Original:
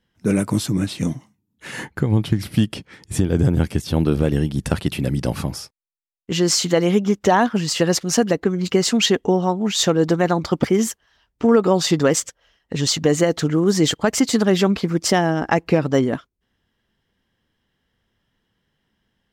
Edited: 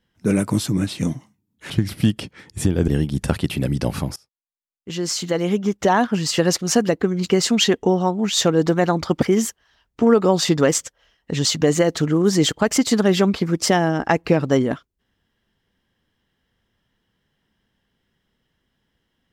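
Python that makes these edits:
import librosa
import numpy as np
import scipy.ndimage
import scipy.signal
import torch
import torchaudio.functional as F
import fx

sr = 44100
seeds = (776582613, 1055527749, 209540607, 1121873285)

y = fx.edit(x, sr, fx.cut(start_s=1.7, length_s=0.54),
    fx.cut(start_s=3.42, length_s=0.88),
    fx.fade_in_from(start_s=5.58, length_s=2.07, floor_db=-23.0), tone=tone)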